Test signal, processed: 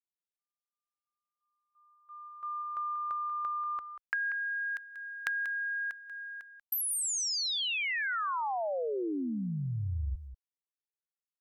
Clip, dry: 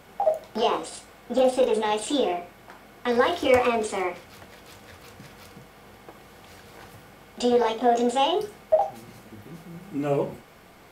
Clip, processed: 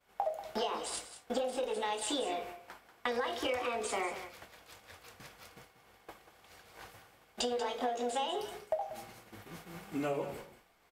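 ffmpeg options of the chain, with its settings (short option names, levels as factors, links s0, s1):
-af "agate=range=0.0224:threshold=0.0112:ratio=3:detection=peak,equalizer=f=170:t=o:w=2.7:g=-9.5,acompressor=threshold=0.0224:ratio=16,aecho=1:1:188:0.251,volume=1.26"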